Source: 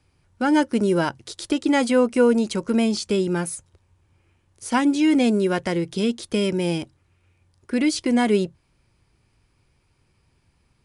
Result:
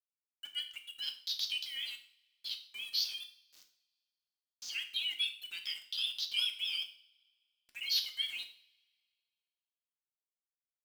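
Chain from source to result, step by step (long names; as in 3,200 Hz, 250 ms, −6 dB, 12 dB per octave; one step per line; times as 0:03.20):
0:01.66–0:04.69: spectrum averaged block by block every 100 ms
inverse Chebyshev low-pass filter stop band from 8,800 Hz, stop band 40 dB
gate on every frequency bin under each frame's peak −30 dB strong
Butterworth high-pass 3,000 Hz 36 dB per octave
centre clipping without the shift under −54.5 dBFS
pitch vibrato 5 Hz 95 cents
soft clipping −32.5 dBFS, distortion −13 dB
coupled-rooms reverb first 0.46 s, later 1.9 s, from −25 dB, DRR 4 dB
level +5 dB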